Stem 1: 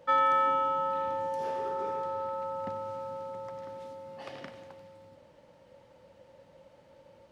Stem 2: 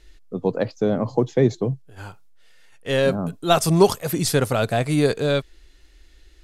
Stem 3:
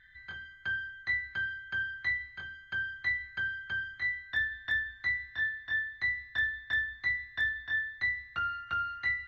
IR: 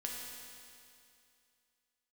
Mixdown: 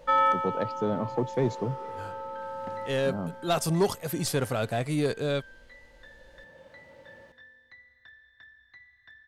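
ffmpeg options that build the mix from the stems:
-filter_complex "[0:a]volume=1.5dB,asplit=2[link_01][link_02];[link_02]volume=-6dB[link_03];[1:a]acontrast=78,volume=-14dB,asplit=2[link_04][link_05];[2:a]acompressor=threshold=-41dB:ratio=12,adelay=1700,volume=-13.5dB,asplit=2[link_06][link_07];[link_07]volume=-3.5dB[link_08];[link_05]apad=whole_len=322786[link_09];[link_01][link_09]sidechaincompress=threshold=-50dB:ratio=8:attack=16:release=817[link_10];[3:a]atrim=start_sample=2205[link_11];[link_03][link_08]amix=inputs=2:normalize=0[link_12];[link_12][link_11]afir=irnorm=-1:irlink=0[link_13];[link_10][link_04][link_06][link_13]amix=inputs=4:normalize=0"

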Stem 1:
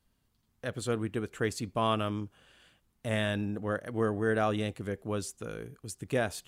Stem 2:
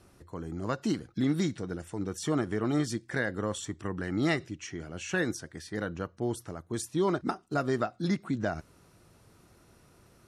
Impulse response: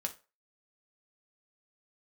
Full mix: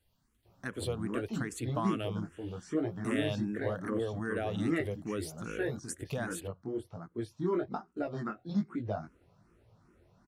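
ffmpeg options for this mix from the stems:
-filter_complex "[0:a]acompressor=threshold=-31dB:ratio=6,volume=2.5dB[link_01];[1:a]lowpass=frequency=1500:poles=1,flanger=delay=17:depth=6.2:speed=1.2,adelay=450,volume=1.5dB[link_02];[link_01][link_02]amix=inputs=2:normalize=0,asplit=2[link_03][link_04];[link_04]afreqshift=2.5[link_05];[link_03][link_05]amix=inputs=2:normalize=1"

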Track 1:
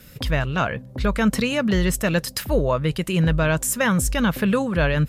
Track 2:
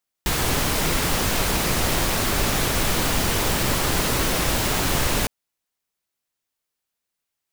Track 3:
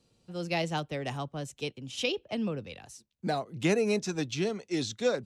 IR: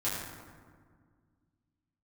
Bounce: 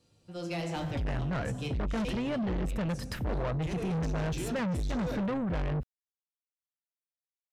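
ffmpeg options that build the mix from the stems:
-filter_complex "[0:a]lowpass=frequency=1100:poles=1,lowshelf=frequency=170:gain=7.5,adelay=750,volume=-0.5dB[link_01];[2:a]alimiter=limit=-23.5dB:level=0:latency=1:release=22,asoftclip=type=tanh:threshold=-26.5dB,volume=-4dB,asplit=2[link_02][link_03];[link_03]volume=-4.5dB[link_04];[3:a]atrim=start_sample=2205[link_05];[link_04][link_05]afir=irnorm=-1:irlink=0[link_06];[link_01][link_02][link_06]amix=inputs=3:normalize=0,asoftclip=type=tanh:threshold=-24.5dB,acompressor=threshold=-30dB:ratio=6"

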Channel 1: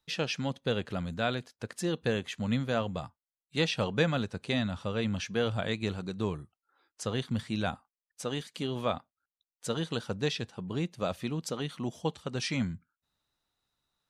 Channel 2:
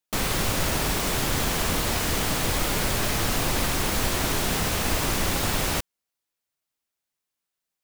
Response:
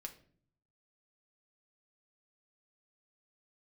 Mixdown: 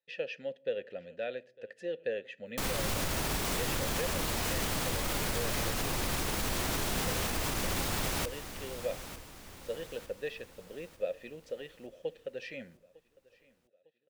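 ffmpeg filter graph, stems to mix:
-filter_complex "[0:a]asplit=3[link_01][link_02][link_03];[link_01]bandpass=frequency=530:width_type=q:width=8,volume=0dB[link_04];[link_02]bandpass=frequency=1840:width_type=q:width=8,volume=-6dB[link_05];[link_03]bandpass=frequency=2480:width_type=q:width=8,volume=-9dB[link_06];[link_04][link_05][link_06]amix=inputs=3:normalize=0,volume=2dB,asplit=3[link_07][link_08][link_09];[link_08]volume=-6.5dB[link_10];[link_09]volume=-21.5dB[link_11];[1:a]adelay=2450,volume=-2dB,asplit=2[link_12][link_13];[link_13]volume=-17.5dB[link_14];[2:a]atrim=start_sample=2205[link_15];[link_10][link_15]afir=irnorm=-1:irlink=0[link_16];[link_11][link_14]amix=inputs=2:normalize=0,aecho=0:1:903|1806|2709|3612|4515|5418:1|0.46|0.212|0.0973|0.0448|0.0206[link_17];[link_07][link_12][link_16][link_17]amix=inputs=4:normalize=0,alimiter=limit=-22.5dB:level=0:latency=1:release=125"

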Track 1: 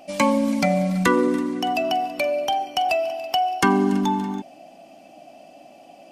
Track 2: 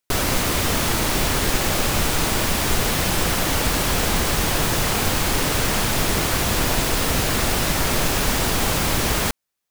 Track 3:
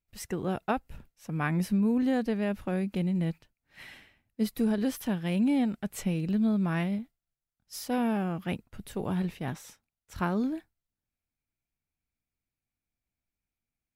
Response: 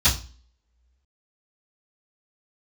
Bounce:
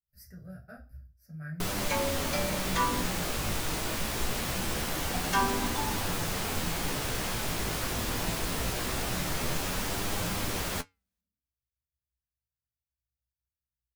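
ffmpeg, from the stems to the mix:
-filter_complex "[0:a]highpass=490,adelay=1700,volume=-16.5dB,asplit=3[link_01][link_02][link_03];[link_01]atrim=end=3.02,asetpts=PTS-STARTPTS,afade=type=out:start_time=3.016:duration=0.004:curve=hsin[link_04];[link_02]atrim=start=3.02:end=5.13,asetpts=PTS-STARTPTS,volume=0[link_05];[link_03]atrim=start=5.13,asetpts=PTS-STARTPTS,afade=type=in:duration=0.004:curve=hsin[link_06];[link_04][link_05][link_06]concat=n=3:v=0:a=1,asplit=2[link_07][link_08];[link_08]volume=-3.5dB[link_09];[1:a]flanger=delay=9.8:depth=9.3:regen=39:speed=0.23:shape=sinusoidal,adelay=1500,volume=-3dB[link_10];[2:a]firequalizer=gain_entry='entry(140,0);entry(350,-15);entry(620,3);entry(900,-28);entry(1500,4);entry(3200,-29);entry(4800,6);entry(6800,-8);entry(12000,13)':delay=0.05:min_phase=1,volume=-14dB,asplit=2[link_11][link_12];[link_12]volume=-13.5dB[link_13];[3:a]atrim=start_sample=2205[link_14];[link_09][link_13]amix=inputs=2:normalize=0[link_15];[link_15][link_14]afir=irnorm=-1:irlink=0[link_16];[link_07][link_10][link_11][link_16]amix=inputs=4:normalize=0,flanger=delay=4.9:depth=1.6:regen=-87:speed=0.93:shape=triangular"

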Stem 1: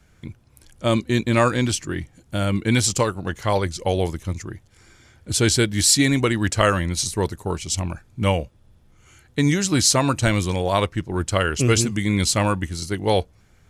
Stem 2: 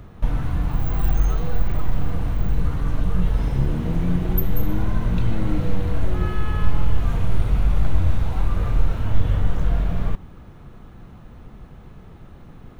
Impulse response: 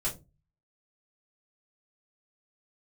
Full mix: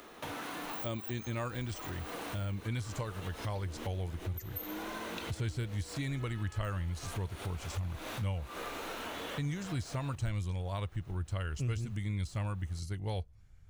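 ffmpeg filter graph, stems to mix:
-filter_complex "[0:a]deesser=0.5,asubboost=boost=5.5:cutoff=120,volume=-14.5dB,asplit=2[link_01][link_02];[1:a]highpass=frequency=290:width=0.5412,highpass=frequency=290:width=1.3066,highshelf=frequency=2100:gain=11.5,acompressor=threshold=-35dB:ratio=3,volume=-2.5dB[link_03];[link_02]apad=whole_len=564126[link_04];[link_03][link_04]sidechaincompress=threshold=-41dB:ratio=5:attack=16:release=176[link_05];[link_01][link_05]amix=inputs=2:normalize=0,acompressor=threshold=-36dB:ratio=2"

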